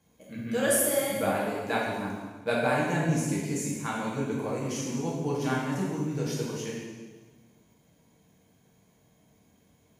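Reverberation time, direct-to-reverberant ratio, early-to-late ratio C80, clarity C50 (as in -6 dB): 1.4 s, -5.5 dB, 2.5 dB, 0.0 dB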